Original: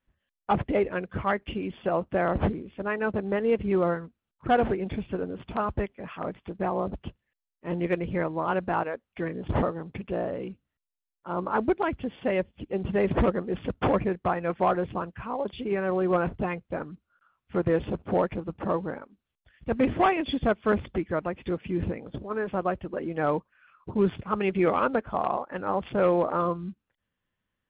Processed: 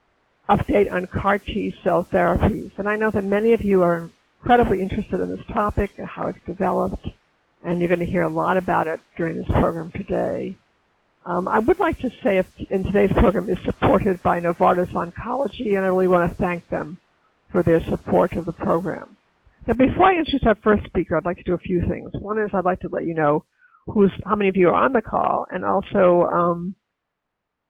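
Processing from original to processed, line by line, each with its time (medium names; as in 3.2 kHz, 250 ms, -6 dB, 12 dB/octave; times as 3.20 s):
19.75 s: noise floor step -49 dB -64 dB
whole clip: spectral noise reduction 12 dB; level-controlled noise filter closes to 1.4 kHz, open at -23.5 dBFS; trim +7.5 dB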